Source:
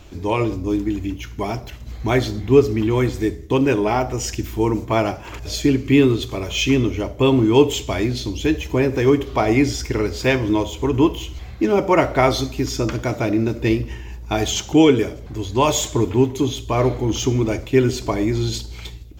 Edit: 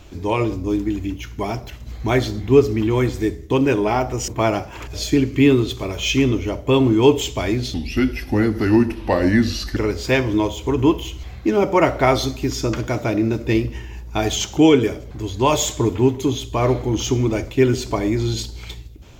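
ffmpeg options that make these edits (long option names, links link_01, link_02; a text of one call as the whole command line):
ffmpeg -i in.wav -filter_complex "[0:a]asplit=4[link_01][link_02][link_03][link_04];[link_01]atrim=end=4.282[link_05];[link_02]atrim=start=4.798:end=8.264[link_06];[link_03]atrim=start=8.26:end=9.92,asetpts=PTS-STARTPTS,asetrate=36162,aresample=44100[link_07];[link_04]atrim=start=9.916[link_08];[link_05][link_06]acrossfade=duration=0.004:curve1=hsin:curve2=hsin[link_09];[link_09][link_07]acrossfade=duration=0.004:curve1=hsin:curve2=hsin[link_10];[link_10][link_08]acrossfade=duration=0.004:curve1=hsin:curve2=hsin" out.wav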